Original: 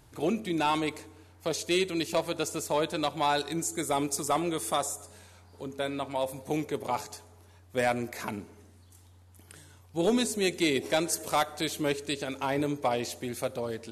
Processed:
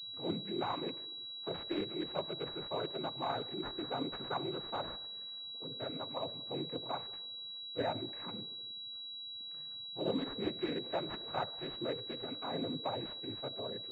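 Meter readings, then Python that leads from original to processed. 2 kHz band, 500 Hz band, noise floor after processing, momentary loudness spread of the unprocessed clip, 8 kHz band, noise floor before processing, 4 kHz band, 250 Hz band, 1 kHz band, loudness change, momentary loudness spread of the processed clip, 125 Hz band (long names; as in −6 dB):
−13.5 dB, −9.5 dB, −46 dBFS, 9 LU, below −40 dB, −56 dBFS, −1.5 dB, −9.5 dB, −10.0 dB, −9.0 dB, 6 LU, −8.0 dB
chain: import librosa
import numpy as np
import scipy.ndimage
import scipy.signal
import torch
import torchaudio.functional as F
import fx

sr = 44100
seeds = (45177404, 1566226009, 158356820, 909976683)

y = fx.octave_divider(x, sr, octaves=2, level_db=-3.0)
y = fx.noise_vocoder(y, sr, seeds[0], bands=16)
y = fx.pwm(y, sr, carrier_hz=3900.0)
y = y * librosa.db_to_amplitude(-9.0)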